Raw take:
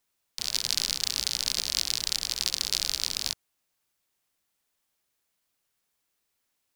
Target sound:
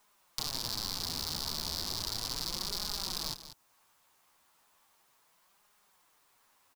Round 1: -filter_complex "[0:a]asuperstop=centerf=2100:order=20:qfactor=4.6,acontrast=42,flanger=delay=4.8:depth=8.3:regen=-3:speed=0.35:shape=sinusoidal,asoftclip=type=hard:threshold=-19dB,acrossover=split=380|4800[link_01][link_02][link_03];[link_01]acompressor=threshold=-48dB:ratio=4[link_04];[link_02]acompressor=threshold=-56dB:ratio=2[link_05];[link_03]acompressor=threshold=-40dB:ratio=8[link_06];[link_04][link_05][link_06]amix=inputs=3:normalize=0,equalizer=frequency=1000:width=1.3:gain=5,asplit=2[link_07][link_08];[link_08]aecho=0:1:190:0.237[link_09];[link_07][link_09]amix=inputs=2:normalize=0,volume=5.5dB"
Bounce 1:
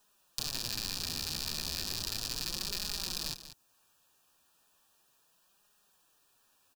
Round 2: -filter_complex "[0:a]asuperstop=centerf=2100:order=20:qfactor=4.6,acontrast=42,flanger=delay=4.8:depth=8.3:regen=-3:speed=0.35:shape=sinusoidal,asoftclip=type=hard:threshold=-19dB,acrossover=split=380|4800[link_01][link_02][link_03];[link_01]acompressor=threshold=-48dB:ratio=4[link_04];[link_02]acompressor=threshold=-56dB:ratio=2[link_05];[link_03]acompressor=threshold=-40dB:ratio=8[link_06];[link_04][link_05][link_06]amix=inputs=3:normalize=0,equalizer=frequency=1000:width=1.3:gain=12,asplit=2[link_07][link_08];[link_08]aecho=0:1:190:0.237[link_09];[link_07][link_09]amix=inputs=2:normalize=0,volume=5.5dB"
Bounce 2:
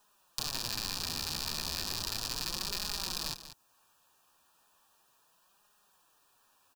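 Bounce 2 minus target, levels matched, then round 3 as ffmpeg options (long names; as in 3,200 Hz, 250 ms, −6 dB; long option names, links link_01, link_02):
2,000 Hz band +5.5 dB
-filter_complex "[0:a]acontrast=42,flanger=delay=4.8:depth=8.3:regen=-3:speed=0.35:shape=sinusoidal,asoftclip=type=hard:threshold=-19dB,acrossover=split=380|4800[link_01][link_02][link_03];[link_01]acompressor=threshold=-48dB:ratio=4[link_04];[link_02]acompressor=threshold=-56dB:ratio=2[link_05];[link_03]acompressor=threshold=-40dB:ratio=8[link_06];[link_04][link_05][link_06]amix=inputs=3:normalize=0,equalizer=frequency=1000:width=1.3:gain=12,asplit=2[link_07][link_08];[link_08]aecho=0:1:190:0.237[link_09];[link_07][link_09]amix=inputs=2:normalize=0,volume=5.5dB"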